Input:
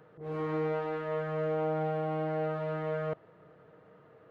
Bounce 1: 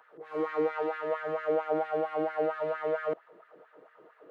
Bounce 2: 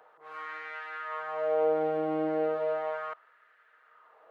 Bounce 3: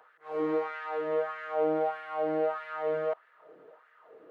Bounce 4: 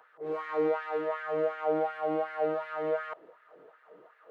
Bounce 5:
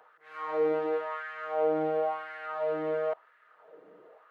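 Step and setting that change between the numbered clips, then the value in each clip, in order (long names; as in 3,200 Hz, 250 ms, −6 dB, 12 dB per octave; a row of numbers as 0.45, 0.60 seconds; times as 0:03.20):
auto-filter high-pass, speed: 4.4, 0.35, 1.6, 2.7, 0.96 Hertz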